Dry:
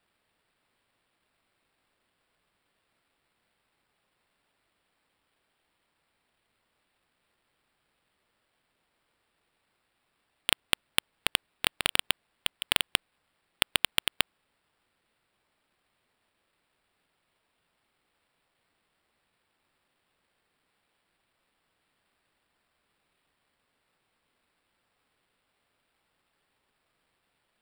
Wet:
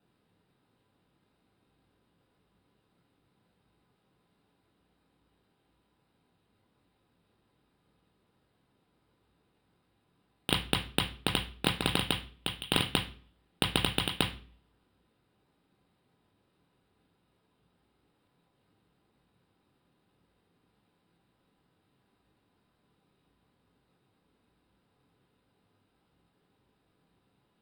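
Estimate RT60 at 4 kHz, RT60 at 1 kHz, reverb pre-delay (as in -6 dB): 0.40 s, 0.40 s, 3 ms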